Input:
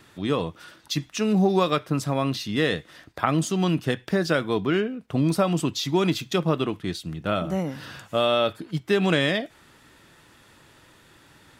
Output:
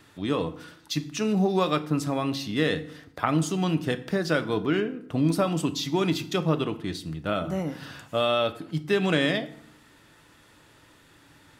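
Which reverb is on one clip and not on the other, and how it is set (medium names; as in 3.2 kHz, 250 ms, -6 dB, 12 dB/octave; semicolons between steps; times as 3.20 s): FDN reverb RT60 0.7 s, low-frequency decay 1.35×, high-frequency decay 0.7×, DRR 10.5 dB; trim -2.5 dB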